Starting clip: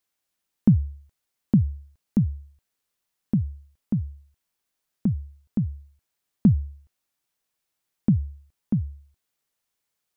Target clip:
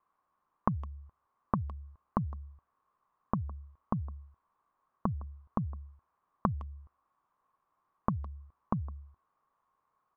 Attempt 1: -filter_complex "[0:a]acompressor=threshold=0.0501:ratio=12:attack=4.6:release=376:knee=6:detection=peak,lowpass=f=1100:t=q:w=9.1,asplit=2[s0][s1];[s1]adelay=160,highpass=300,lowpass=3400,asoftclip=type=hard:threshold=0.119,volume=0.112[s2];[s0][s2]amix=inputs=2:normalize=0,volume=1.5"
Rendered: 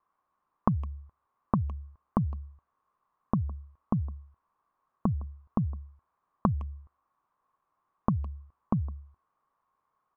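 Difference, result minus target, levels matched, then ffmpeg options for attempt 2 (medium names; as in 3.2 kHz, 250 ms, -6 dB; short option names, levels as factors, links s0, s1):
compression: peak gain reduction -6 dB
-filter_complex "[0:a]acompressor=threshold=0.0237:ratio=12:attack=4.6:release=376:knee=6:detection=peak,lowpass=f=1100:t=q:w=9.1,asplit=2[s0][s1];[s1]adelay=160,highpass=300,lowpass=3400,asoftclip=type=hard:threshold=0.119,volume=0.112[s2];[s0][s2]amix=inputs=2:normalize=0,volume=1.5"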